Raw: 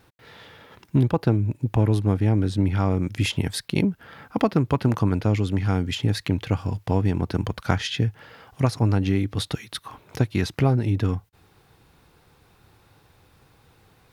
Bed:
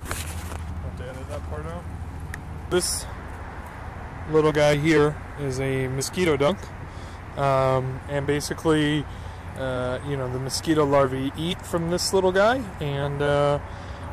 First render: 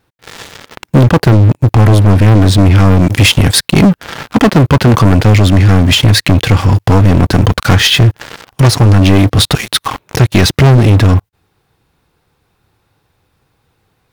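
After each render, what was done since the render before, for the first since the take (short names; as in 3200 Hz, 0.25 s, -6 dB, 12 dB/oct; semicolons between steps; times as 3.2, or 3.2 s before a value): sample leveller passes 5; in parallel at +2 dB: limiter -15 dBFS, peak gain reduction 10 dB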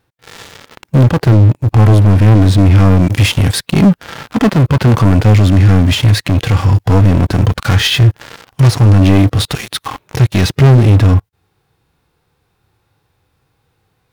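harmonic-percussive split percussive -8 dB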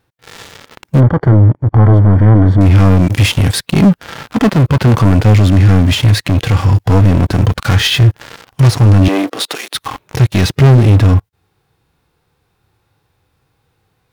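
1–2.61 polynomial smoothing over 41 samples; 9.08–9.75 HPF 290 Hz 24 dB/oct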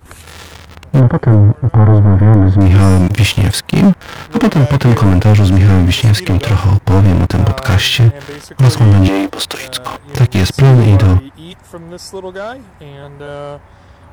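add bed -5.5 dB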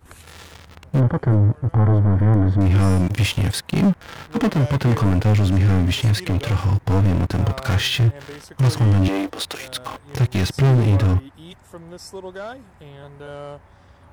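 gain -8.5 dB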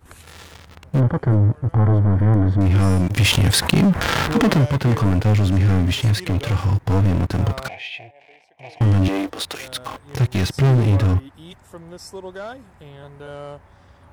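3.16–4.65 fast leveller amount 70%; 7.68–8.81 double band-pass 1300 Hz, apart 1.7 oct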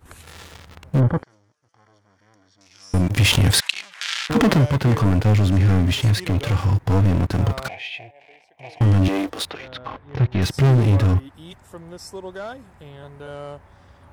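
1.23–2.94 band-pass 5700 Hz, Q 4.7; 3.6–4.3 Butterworth band-pass 4400 Hz, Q 0.74; 9.5–10.42 air absorption 270 m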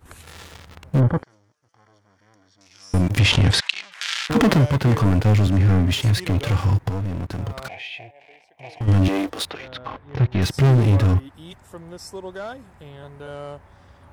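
3.19–3.92 LPF 5800 Hz; 5.47–6.17 three-band expander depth 40%; 6.89–8.88 compressor 2:1, threshold -31 dBFS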